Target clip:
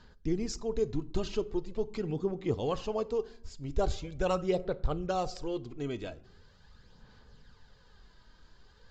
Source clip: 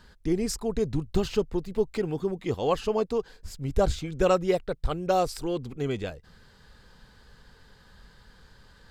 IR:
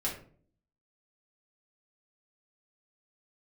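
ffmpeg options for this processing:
-filter_complex "[0:a]aresample=16000,aresample=44100,asplit=2[s0][s1];[1:a]atrim=start_sample=2205,asetrate=26019,aresample=44100[s2];[s1][s2]afir=irnorm=-1:irlink=0,volume=0.0891[s3];[s0][s3]amix=inputs=2:normalize=0,aphaser=in_gain=1:out_gain=1:delay=3.2:decay=0.4:speed=0.42:type=sinusoidal,equalizer=f=1800:t=o:w=0.77:g=-3,volume=0.447"

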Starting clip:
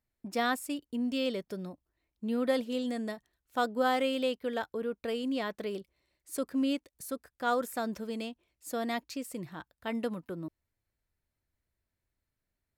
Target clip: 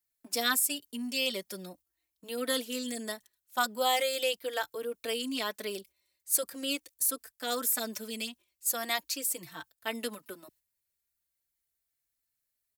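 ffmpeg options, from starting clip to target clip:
-filter_complex "[0:a]agate=range=0.447:threshold=0.00224:ratio=16:detection=peak,lowshelf=f=240:g=-6.5,acrossover=split=160[s0][s1];[s0]alimiter=level_in=39.8:limit=0.0631:level=0:latency=1,volume=0.0251[s2];[s2][s1]amix=inputs=2:normalize=0,crystalizer=i=6.5:c=0,asplit=2[s3][s4];[s4]adelay=4,afreqshift=-0.42[s5];[s3][s5]amix=inputs=2:normalize=1"

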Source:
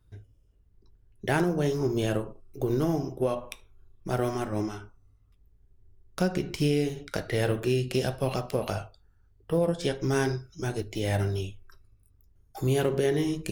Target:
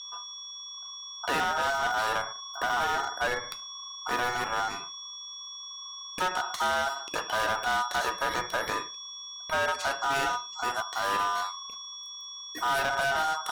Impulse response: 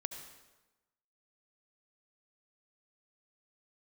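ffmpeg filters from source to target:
-af "aeval=exprs='val(0)+0.01*sin(2*PI*4500*n/s)':c=same,aeval=exprs='val(0)*sin(2*PI*1100*n/s)':c=same,asoftclip=type=hard:threshold=0.0447,volume=1.58"

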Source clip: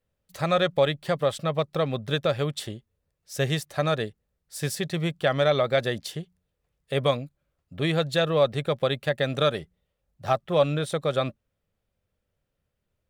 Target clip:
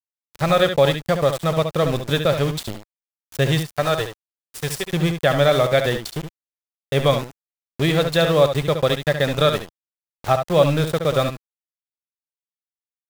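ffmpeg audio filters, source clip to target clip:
-filter_complex "[0:a]asettb=1/sr,asplit=3[s0][s1][s2];[s0]atrim=end=3.604[s3];[s1]atrim=start=3.6:end=4.91,asetpts=PTS-STARTPTS,afade=t=in:d=0.004:c=qsin,afade=t=out:st=1.306:d=0.004:c=qsin,equalizer=f=210:t=o:w=0.7:g=-14.5[s4];[s2]atrim=start=4.906[s5];[s3][s4]acrossfade=d=0.004:c1=hsin:c2=qsin[s6];[s6][s5]acrossfade=d=0.004:c1=qsin:c2=hsin,aeval=exprs='val(0)*gte(abs(val(0)),0.0266)':c=same,lowshelf=f=99:g=7,aecho=1:1:65|71:0.133|0.376,volume=1.78"

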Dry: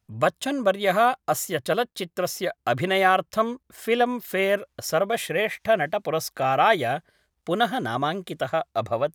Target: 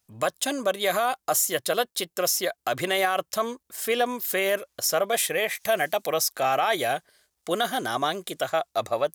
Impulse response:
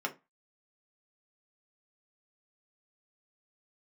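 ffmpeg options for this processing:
-filter_complex "[0:a]bass=f=250:g=-10,treble=f=4000:g=11,alimiter=limit=0.224:level=0:latency=1:release=33,asettb=1/sr,asplit=3[s0][s1][s2];[s0]atrim=end=5.554[s3];[s1]atrim=start=5.55:end=6.14,asetpts=PTS-STARTPTS,afade=t=in:d=0.004:c=qsin,afade=t=out:st=0.586:d=0.004:c=qsin,highshelf=f=5800:g=9[s4];[s2]atrim=start=6.136[s5];[s3][s4]acrossfade=d=0.004:c1=hsin:c2=qsin[s6];[s6][s5]acrossfade=d=0.004:c1=qsin:c2=hsin"

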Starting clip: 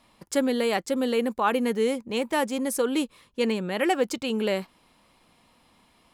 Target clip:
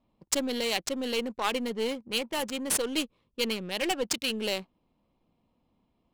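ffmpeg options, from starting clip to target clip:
-af "aeval=exprs='0.316*(cos(1*acos(clip(val(0)/0.316,-1,1)))-cos(1*PI/2))+0.0708*(cos(2*acos(clip(val(0)/0.316,-1,1)))-cos(2*PI/2))':c=same,aexciter=amount=3.6:drive=8.2:freq=2500,adynamicsmooth=sensitivity=2.5:basefreq=620,volume=0.473"

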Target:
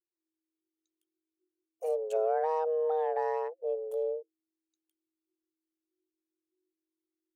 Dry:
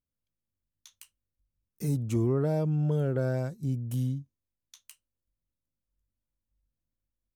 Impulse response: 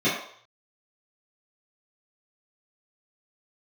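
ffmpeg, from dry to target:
-af "anlmdn=1.58,afreqshift=320,volume=0.75"

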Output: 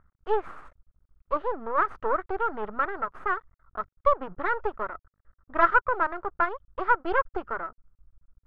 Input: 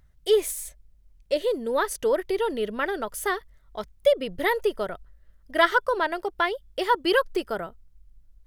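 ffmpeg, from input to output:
-af "aeval=exprs='max(val(0),0)':c=same,lowpass=f=1300:t=q:w=5.2,volume=0.75"

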